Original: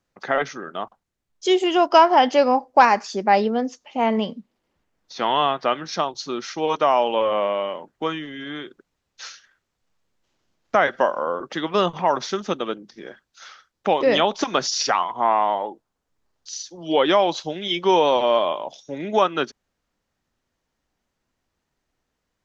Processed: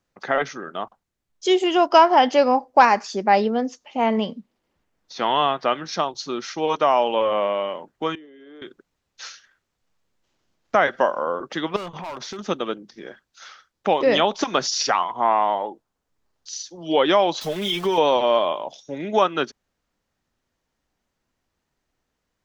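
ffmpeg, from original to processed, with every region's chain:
-filter_complex "[0:a]asettb=1/sr,asplit=3[a][b][c];[a]atrim=end=8.154[d];[b]atrim=start=8.15:end=8.62,asetpts=PTS-STARTPTS,afade=t=in:d=0.004:c=qsin,afade=t=out:st=0.466:d=0.004:c=qsin,aemphasis=mode=production:type=riaa,asoftclip=type=hard:threshold=-22.5dB,bandpass=f=410:t=q:w=2.7[e];[c]atrim=start=8.616[f];[d][e]acrossfade=d=0.004:c1=hsin:c2=qsin[g];[g][f]acrossfade=d=0.004:c1=qsin:c2=hsin,asettb=1/sr,asplit=3[h][i][j];[h]atrim=end=11.764[k];[i]atrim=start=11.76:end=12.39,asetpts=PTS-STARTPTS,afade=t=in:d=0.004:c=qsin,afade=t=out:st=0.626:d=0.004:c=qsin,asoftclip=type=hard:threshold=-20dB,acompressor=threshold=-30dB:ratio=10:attack=3.2:release=140:knee=1:detection=peak[l];[j]atrim=start=12.386[m];[k][l]acrossfade=d=0.004:c1=hsin:c2=qsin[n];[n][m]acrossfade=d=0.004:c1=qsin:c2=hsin,asettb=1/sr,asplit=3[o][p][q];[o]atrim=end=17.414[r];[p]atrim=start=17.41:end=17.98,asetpts=PTS-STARTPTS,afade=t=in:d=0.004:c=qsin,afade=t=out:st=0.566:d=0.004:c=qsin,aeval=exprs='val(0)+0.5*0.0251*sgn(val(0))':c=same,aecho=1:1:4.7:0.51,atrim=end_sample=25137,acompressor=threshold=-20dB:ratio=2.5:attack=3.2:release=140:knee=1:detection=peak[s];[q]atrim=start=17.976[t];[r][s]acrossfade=d=0.004:c1=hsin:c2=qsin[u];[u][t]acrossfade=d=0.004:c1=qsin:c2=hsin"

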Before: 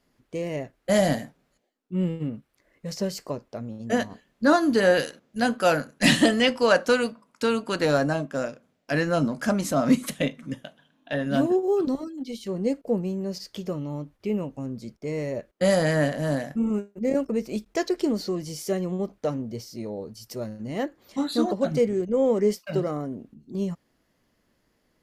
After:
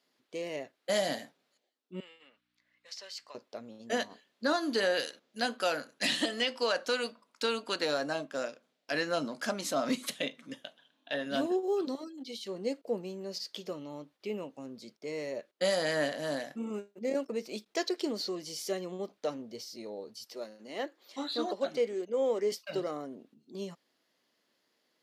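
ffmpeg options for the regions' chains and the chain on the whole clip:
-filter_complex "[0:a]asettb=1/sr,asplit=3[a][b][c];[a]atrim=end=2.004[d];[b]atrim=start=2:end=3.35,asetpts=PTS-STARTPTS,afade=t=in:d=0.004:c=qsin,afade=t=out:st=1.346:d=0.004:c=qsin,highpass=1.4k,aemphasis=mode=reproduction:type=50fm,aeval=exprs='val(0)+0.000631*(sin(2*PI*60*n/s)+sin(2*PI*2*60*n/s)/2+sin(2*PI*3*60*n/s)/3+sin(2*PI*4*60*n/s)/4+sin(2*PI*5*60*n/s)/5)':c=same[e];[c]atrim=start=3.346[f];[d][e]acrossfade=d=0.004:c1=hsin:c2=qsin[g];[g][f]acrossfade=d=0.004:c1=qsin:c2=hsin,asettb=1/sr,asplit=3[h][i][j];[h]atrim=end=20.244[k];[i]atrim=start=20.24:end=22.52,asetpts=PTS-STARTPTS,afade=t=in:d=0.004:c=qsin,afade=t=out:st=2.276:d=0.004:c=qsin,acrossover=split=4000[l][m];[m]acompressor=threshold=-50dB:ratio=4:attack=1:release=60[n];[l][n]amix=inputs=2:normalize=0,highpass=270[o];[j]atrim=start=22.516[p];[k][o]acrossfade=d=0.004:c1=hsin:c2=qsin[q];[q][p]acrossfade=d=0.004:c1=qsin:c2=hsin,highpass=320,equalizer=f=3.9k:w=1.2:g=8.5,alimiter=limit=-12.5dB:level=0:latency=1:release=222,volume=-6dB"

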